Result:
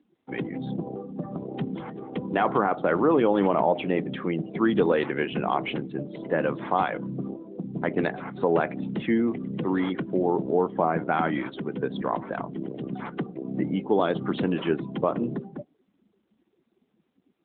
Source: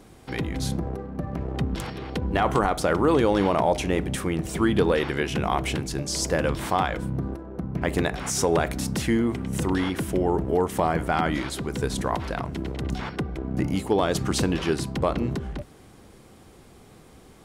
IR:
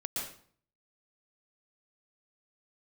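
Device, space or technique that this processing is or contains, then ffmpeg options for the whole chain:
mobile call with aggressive noise cancelling: -af "highpass=f=160:w=0.5412,highpass=f=160:w=1.3066,afftdn=nr=24:nf=-36" -ar 8000 -c:a libopencore_amrnb -b:a 12200

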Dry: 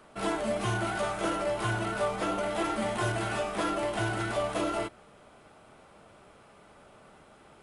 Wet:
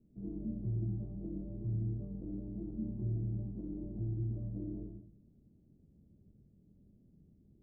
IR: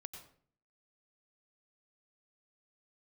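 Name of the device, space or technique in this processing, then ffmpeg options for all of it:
next room: -filter_complex "[0:a]lowpass=f=260:w=0.5412,lowpass=f=260:w=1.3066[a];[1:a]atrim=start_sample=2205[b];[a][b]afir=irnorm=-1:irlink=0,volume=3dB"

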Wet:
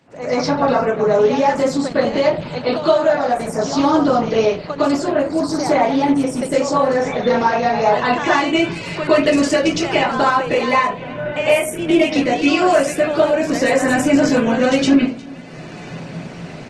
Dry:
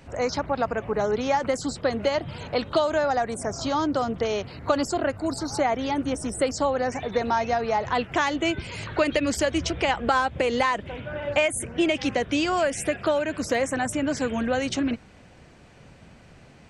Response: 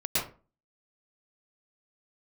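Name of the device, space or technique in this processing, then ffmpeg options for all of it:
far-field microphone of a smart speaker: -filter_complex "[0:a]lowpass=9.5k,asettb=1/sr,asplit=3[a][b][c];[a]atrim=end=6.524[d];[b]atrim=start=6.52:end=8,asetpts=PTS-STARTPTS,afade=t=in:d=0.004:c=qsin,afade=t=out:st=1.476:d=0.004:c=qsin,asplit=2[e][f];[f]adelay=30,volume=-6dB[g];[e][g]amix=inputs=2:normalize=0,atrim=end_sample=65268[h];[c]atrim=start=7.996[i];[d][h]acrossfade=d=0.004:c1=hsin:c2=qsin[j];[j][i]acrossfade=d=0.004:c1=qsin:c2=hsin,aecho=1:1:356:0.0668[k];[1:a]atrim=start_sample=2205[l];[k][l]afir=irnorm=-1:irlink=0,highpass=f=130:w=0.5412,highpass=f=130:w=1.3066,dynaudnorm=f=170:g=5:m=13dB,volume=-2.5dB" -ar 48000 -c:a libopus -b:a 16k

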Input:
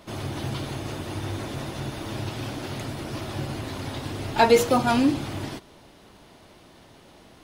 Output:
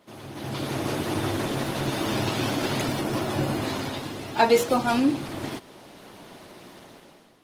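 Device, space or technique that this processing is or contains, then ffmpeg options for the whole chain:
video call: -filter_complex "[0:a]asettb=1/sr,asplit=3[a][b][c];[a]atrim=end=3.004[d];[b]atrim=start=3:end=3.62,asetpts=PTS-STARTPTS,afade=t=in:d=0.004:c=qsin,afade=t=out:st=0.616:d=0.004:c=qsin,equalizer=f=4.1k:w=0.47:g=-4.5[e];[c]atrim=start=3.616[f];[d][e]acrossfade=d=0.004:c1=hsin:c2=qsin[g];[g][f]acrossfade=d=0.004:c1=qsin:c2=hsin,highpass=150,dynaudnorm=f=170:g=7:m=15dB,volume=-7dB" -ar 48000 -c:a libopus -b:a 20k

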